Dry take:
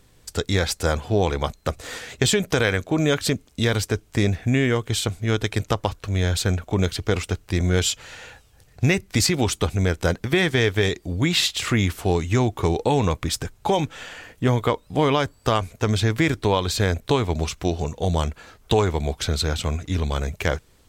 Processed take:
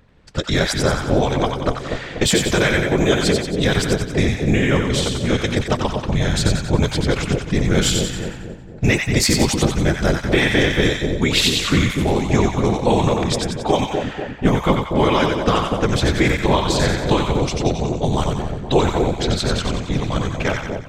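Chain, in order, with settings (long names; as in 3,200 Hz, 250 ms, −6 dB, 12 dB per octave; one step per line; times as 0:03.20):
low-pass that shuts in the quiet parts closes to 2,400 Hz, open at −16.5 dBFS
random phases in short frames
echo with a time of its own for lows and highs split 790 Hz, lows 244 ms, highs 91 ms, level −4 dB
level +2.5 dB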